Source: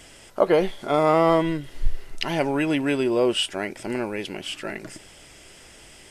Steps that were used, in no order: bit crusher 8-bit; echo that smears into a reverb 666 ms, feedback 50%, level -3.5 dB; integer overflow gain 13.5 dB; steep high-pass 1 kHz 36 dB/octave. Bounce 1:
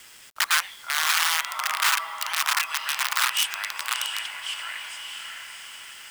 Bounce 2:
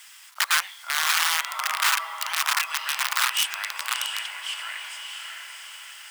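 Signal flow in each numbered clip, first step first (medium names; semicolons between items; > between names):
echo that smears into a reverb > integer overflow > steep high-pass > bit crusher; echo that smears into a reverb > integer overflow > bit crusher > steep high-pass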